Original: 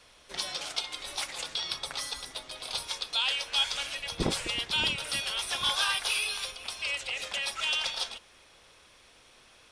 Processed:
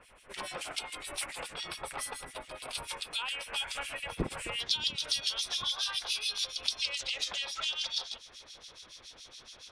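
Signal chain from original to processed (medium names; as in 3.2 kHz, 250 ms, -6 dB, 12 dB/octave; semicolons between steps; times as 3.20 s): high-order bell 4.7 kHz -9.5 dB 1.2 oct, from 4.60 s +10 dB; compression 5:1, threshold -32 dBFS, peak gain reduction 14 dB; harmonic tremolo 7.1 Hz, depth 100%, crossover 2.2 kHz; trim +5.5 dB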